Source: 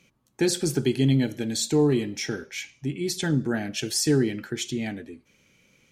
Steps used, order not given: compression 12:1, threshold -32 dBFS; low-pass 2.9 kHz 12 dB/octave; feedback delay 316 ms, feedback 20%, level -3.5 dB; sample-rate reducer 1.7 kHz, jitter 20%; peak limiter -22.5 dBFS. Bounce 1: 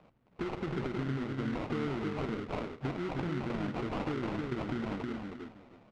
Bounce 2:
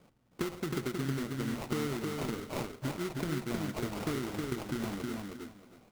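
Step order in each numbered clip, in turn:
peak limiter > compression > feedback delay > sample-rate reducer > low-pass; low-pass > compression > sample-rate reducer > peak limiter > feedback delay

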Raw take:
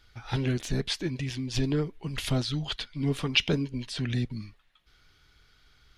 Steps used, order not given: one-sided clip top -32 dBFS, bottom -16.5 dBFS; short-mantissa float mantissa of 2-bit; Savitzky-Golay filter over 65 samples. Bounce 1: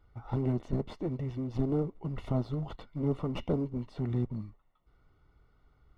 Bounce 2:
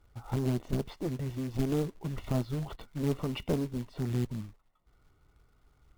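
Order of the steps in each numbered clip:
short-mantissa float > one-sided clip > Savitzky-Golay filter; Savitzky-Golay filter > short-mantissa float > one-sided clip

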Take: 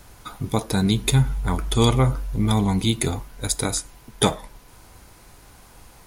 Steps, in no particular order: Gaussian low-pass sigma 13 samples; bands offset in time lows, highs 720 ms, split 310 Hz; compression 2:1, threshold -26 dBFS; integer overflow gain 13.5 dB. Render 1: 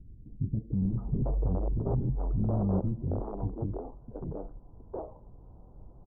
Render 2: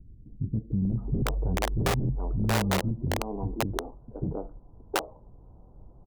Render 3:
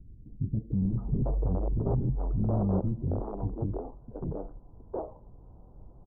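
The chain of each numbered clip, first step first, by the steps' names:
integer overflow > compression > bands offset in time > Gaussian low-pass; Gaussian low-pass > integer overflow > bands offset in time > compression; integer overflow > Gaussian low-pass > compression > bands offset in time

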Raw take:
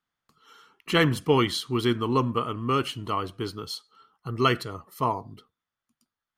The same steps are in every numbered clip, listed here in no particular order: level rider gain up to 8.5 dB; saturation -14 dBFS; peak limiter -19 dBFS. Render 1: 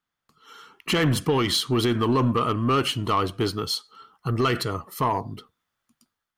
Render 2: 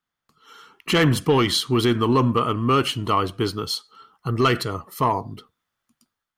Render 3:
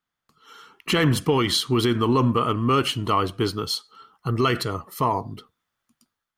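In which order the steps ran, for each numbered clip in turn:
peak limiter > level rider > saturation; saturation > peak limiter > level rider; peak limiter > saturation > level rider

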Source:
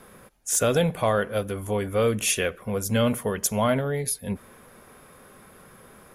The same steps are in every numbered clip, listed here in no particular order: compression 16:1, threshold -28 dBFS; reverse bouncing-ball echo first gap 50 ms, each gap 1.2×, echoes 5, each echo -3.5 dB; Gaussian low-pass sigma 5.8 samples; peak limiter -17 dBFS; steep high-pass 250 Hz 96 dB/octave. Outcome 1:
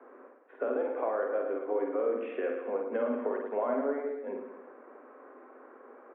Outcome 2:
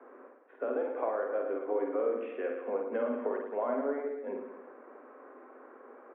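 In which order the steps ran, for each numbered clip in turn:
steep high-pass > peak limiter > Gaussian low-pass > compression > reverse bouncing-ball echo; steep high-pass > compression > reverse bouncing-ball echo > peak limiter > Gaussian low-pass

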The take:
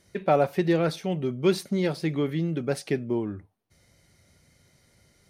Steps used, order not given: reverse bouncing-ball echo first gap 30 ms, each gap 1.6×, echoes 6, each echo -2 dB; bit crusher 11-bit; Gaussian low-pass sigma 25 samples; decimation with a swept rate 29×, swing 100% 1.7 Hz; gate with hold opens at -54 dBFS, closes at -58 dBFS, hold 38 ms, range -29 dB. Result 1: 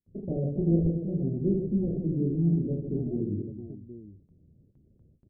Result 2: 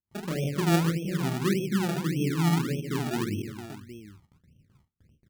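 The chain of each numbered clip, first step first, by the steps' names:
bit crusher > reverse bouncing-ball echo > decimation with a swept rate > Gaussian low-pass > gate with hold; reverse bouncing-ball echo > bit crusher > Gaussian low-pass > decimation with a swept rate > gate with hold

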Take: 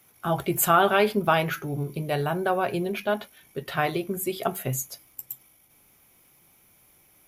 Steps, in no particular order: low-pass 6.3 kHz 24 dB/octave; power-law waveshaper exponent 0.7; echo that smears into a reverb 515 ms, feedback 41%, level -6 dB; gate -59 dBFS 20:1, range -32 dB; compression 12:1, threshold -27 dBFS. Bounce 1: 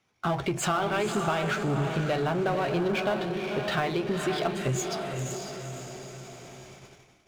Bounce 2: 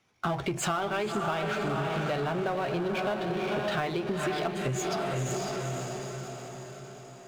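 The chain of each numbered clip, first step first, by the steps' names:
low-pass > compression > echo that smears into a reverb > gate > power-law waveshaper; low-pass > gate > echo that smears into a reverb > power-law waveshaper > compression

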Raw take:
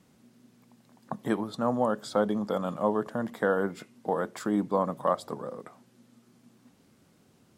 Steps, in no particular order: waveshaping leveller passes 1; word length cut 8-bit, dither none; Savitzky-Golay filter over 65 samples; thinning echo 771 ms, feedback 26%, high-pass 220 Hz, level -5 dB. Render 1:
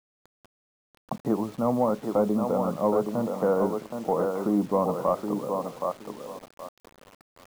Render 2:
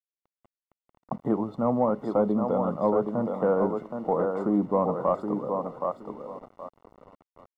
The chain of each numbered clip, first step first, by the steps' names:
thinning echo > waveshaping leveller > Savitzky-Golay filter > word length cut; thinning echo > word length cut > waveshaping leveller > Savitzky-Golay filter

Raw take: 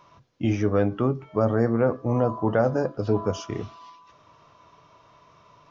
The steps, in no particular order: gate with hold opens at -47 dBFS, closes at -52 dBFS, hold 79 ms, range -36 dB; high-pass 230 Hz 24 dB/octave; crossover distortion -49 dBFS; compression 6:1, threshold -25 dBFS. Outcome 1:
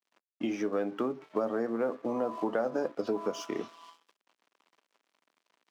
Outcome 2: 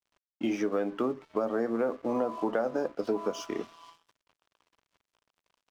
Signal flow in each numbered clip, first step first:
gate with hold > crossover distortion > compression > high-pass; gate with hold > high-pass > crossover distortion > compression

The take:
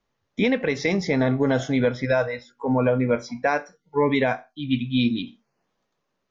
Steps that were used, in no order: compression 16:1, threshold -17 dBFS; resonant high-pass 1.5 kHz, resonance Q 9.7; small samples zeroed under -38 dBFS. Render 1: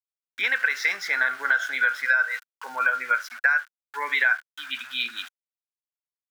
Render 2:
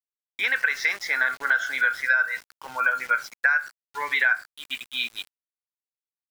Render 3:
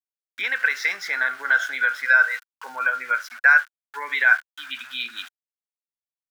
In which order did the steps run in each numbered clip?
small samples zeroed > resonant high-pass > compression; resonant high-pass > small samples zeroed > compression; small samples zeroed > compression > resonant high-pass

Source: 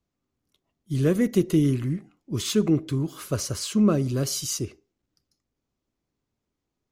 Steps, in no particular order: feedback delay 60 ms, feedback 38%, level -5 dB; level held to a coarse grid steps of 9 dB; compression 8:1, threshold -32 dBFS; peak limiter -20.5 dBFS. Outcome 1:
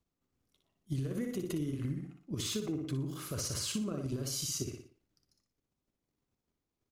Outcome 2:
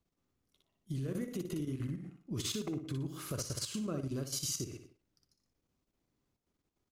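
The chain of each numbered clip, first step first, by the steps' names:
peak limiter > level held to a coarse grid > feedback delay > compression; peak limiter > feedback delay > compression > level held to a coarse grid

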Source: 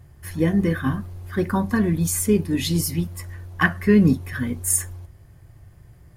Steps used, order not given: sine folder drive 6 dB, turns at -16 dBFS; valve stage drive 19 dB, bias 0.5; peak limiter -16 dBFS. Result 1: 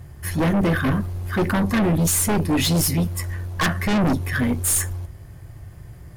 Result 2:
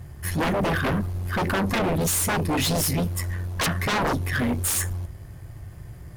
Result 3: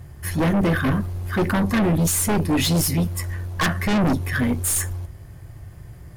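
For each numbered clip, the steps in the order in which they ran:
valve stage > peak limiter > sine folder; sine folder > valve stage > peak limiter; valve stage > sine folder > peak limiter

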